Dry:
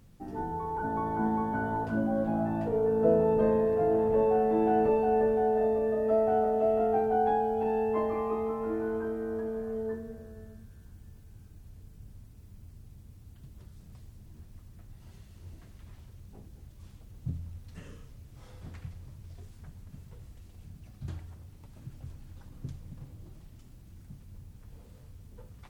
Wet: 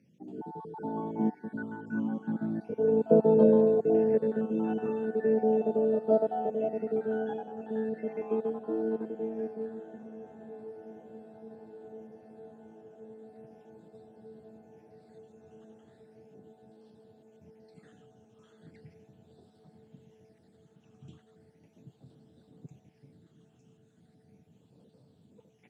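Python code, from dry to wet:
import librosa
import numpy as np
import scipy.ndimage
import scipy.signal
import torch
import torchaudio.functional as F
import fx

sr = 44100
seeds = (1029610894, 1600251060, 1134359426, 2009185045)

p1 = fx.spec_dropout(x, sr, seeds[0], share_pct=33)
p2 = scipy.signal.sosfilt(scipy.signal.butter(4, 160.0, 'highpass', fs=sr, output='sos'), p1)
p3 = fx.peak_eq(p2, sr, hz=1100.0, db=-4.0, octaves=0.73)
p4 = fx.phaser_stages(p3, sr, stages=8, low_hz=610.0, high_hz=2100.0, hz=0.37, feedback_pct=25)
p5 = fx.air_absorb(p4, sr, metres=63.0)
p6 = p5 + fx.echo_diffused(p5, sr, ms=1125, feedback_pct=79, wet_db=-15.0, dry=0)
p7 = fx.upward_expand(p6, sr, threshold_db=-39.0, expansion=1.5)
y = p7 * 10.0 ** (6.0 / 20.0)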